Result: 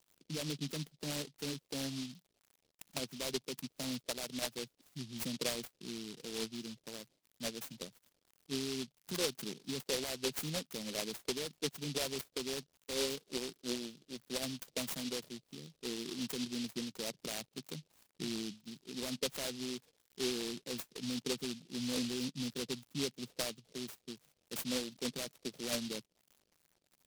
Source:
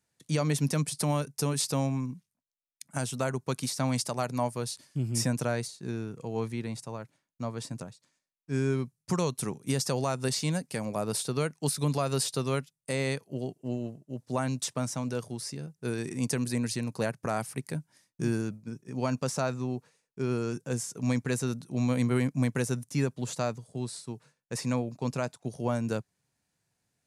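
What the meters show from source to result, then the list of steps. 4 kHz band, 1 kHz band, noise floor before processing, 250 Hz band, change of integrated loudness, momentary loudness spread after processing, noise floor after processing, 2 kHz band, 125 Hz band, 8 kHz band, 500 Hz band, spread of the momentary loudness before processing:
+0.5 dB, -14.5 dB, -85 dBFS, -9.5 dB, -8.0 dB, 10 LU, -81 dBFS, -7.0 dB, -18.0 dB, -6.5 dB, -9.0 dB, 10 LU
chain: formant sharpening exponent 2; HPF 170 Hz 24 dB/oct; limiter -24 dBFS, peak gain reduction 6.5 dB; crackle 130/s -44 dBFS; LFO low-pass sine 2.9 Hz 470–7400 Hz; noise-modulated delay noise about 3900 Hz, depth 0.28 ms; gain -8 dB

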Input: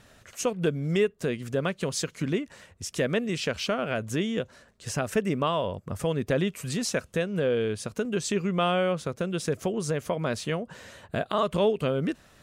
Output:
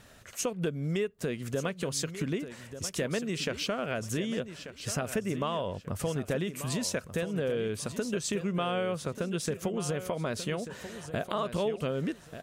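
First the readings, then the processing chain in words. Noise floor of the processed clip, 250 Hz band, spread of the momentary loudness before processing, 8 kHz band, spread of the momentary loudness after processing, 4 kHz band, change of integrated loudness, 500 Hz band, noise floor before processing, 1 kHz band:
-53 dBFS, -4.0 dB, 8 LU, -0.5 dB, 5 LU, -3.0 dB, -4.5 dB, -5.0 dB, -58 dBFS, -5.5 dB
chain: high shelf 12000 Hz +7 dB; compressor 2.5:1, threshold -30 dBFS, peak gain reduction 8 dB; on a send: feedback echo 1.188 s, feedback 24%, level -11.5 dB

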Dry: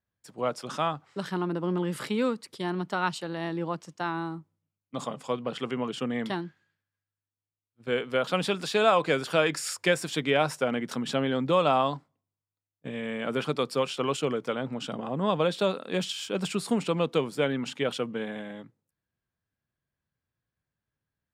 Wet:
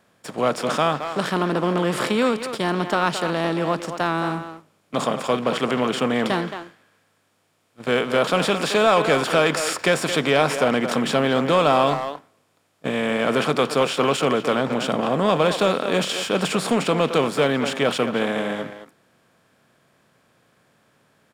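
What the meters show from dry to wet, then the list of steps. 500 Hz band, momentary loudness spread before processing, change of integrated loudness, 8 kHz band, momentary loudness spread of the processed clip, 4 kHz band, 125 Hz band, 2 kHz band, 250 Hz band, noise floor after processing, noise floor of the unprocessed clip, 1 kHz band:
+7.5 dB, 11 LU, +7.5 dB, +8.0 dB, 7 LU, +8.0 dB, +6.5 dB, +8.5 dB, +7.0 dB, -65 dBFS, under -85 dBFS, +8.0 dB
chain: per-bin compression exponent 0.6; speakerphone echo 0.22 s, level -9 dB; sample leveller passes 1

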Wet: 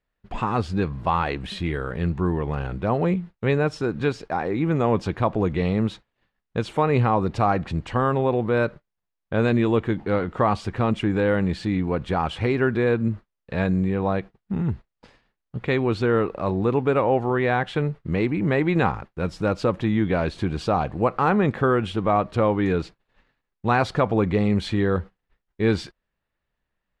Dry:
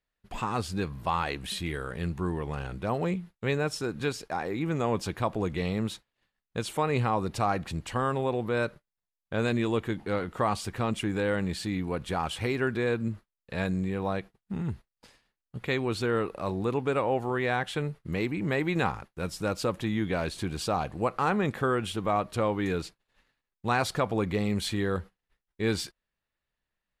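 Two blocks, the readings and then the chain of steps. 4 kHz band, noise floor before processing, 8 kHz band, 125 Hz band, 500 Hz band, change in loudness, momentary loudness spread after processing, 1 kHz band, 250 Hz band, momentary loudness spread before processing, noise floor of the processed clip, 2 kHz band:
0.0 dB, under -85 dBFS, n/a, +7.5 dB, +7.0 dB, +6.5 dB, 7 LU, +6.0 dB, +7.5 dB, 7 LU, -82 dBFS, +4.0 dB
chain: tape spacing loss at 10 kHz 21 dB; gain +8 dB

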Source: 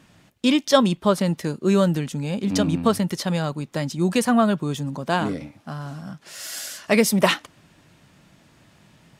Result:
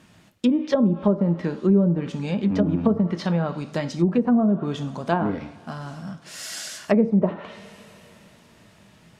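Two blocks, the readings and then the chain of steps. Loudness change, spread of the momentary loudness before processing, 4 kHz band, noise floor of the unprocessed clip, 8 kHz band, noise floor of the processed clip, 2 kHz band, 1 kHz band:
-0.5 dB, 15 LU, -10.0 dB, -57 dBFS, -9.0 dB, -54 dBFS, -8.0 dB, -5.0 dB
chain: two-slope reverb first 0.53 s, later 4 s, from -22 dB, DRR 8 dB; treble ducked by the level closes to 460 Hz, closed at -14 dBFS

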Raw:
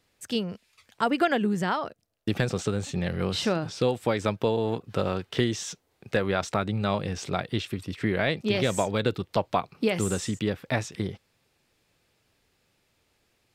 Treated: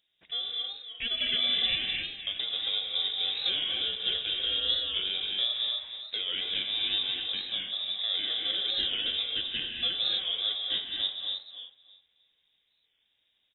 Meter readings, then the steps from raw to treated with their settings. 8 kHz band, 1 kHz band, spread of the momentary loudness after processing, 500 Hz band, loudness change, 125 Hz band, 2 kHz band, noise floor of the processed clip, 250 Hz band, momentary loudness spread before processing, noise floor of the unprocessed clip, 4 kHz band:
under -40 dB, -19.5 dB, 7 LU, -21.0 dB, -0.5 dB, under -25 dB, -5.0 dB, -75 dBFS, -23.5 dB, 7 LU, -71 dBFS, +12.0 dB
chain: FFT order left unsorted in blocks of 16 samples; bell 2400 Hz -7.5 dB 0.2 oct; limiter -16 dBFS, peak gain reduction 5 dB; flange 0.16 Hz, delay 5.5 ms, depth 9.8 ms, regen +79%; on a send: feedback echo 0.311 s, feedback 22%, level -10 dB; on the sum: non-linear reverb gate 0.29 s rising, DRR 0 dB; inverted band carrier 3700 Hz; record warp 45 rpm, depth 100 cents

